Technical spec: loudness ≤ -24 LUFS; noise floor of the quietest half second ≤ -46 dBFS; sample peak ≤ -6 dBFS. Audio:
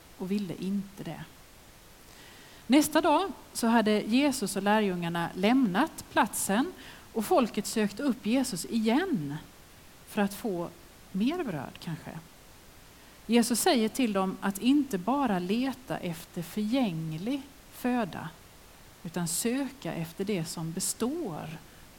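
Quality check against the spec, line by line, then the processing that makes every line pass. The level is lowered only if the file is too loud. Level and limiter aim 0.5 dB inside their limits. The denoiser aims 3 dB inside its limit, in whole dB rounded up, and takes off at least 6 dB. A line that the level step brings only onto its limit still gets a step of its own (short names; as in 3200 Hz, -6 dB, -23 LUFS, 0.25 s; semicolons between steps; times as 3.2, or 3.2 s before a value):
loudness -29.0 LUFS: OK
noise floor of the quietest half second -53 dBFS: OK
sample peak -10.0 dBFS: OK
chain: none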